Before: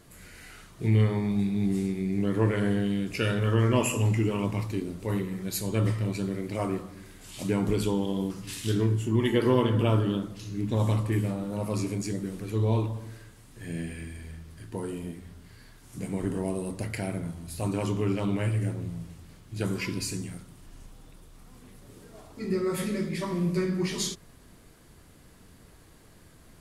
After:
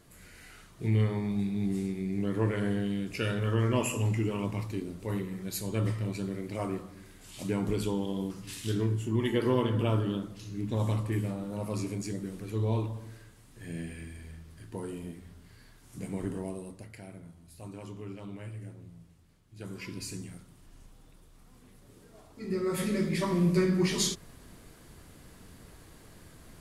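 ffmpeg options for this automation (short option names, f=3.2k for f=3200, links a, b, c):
-af "volume=12.5dB,afade=t=out:st=16.22:d=0.64:silence=0.298538,afade=t=in:st=19.56:d=0.59:silence=0.375837,afade=t=in:st=22.41:d=0.72:silence=0.398107"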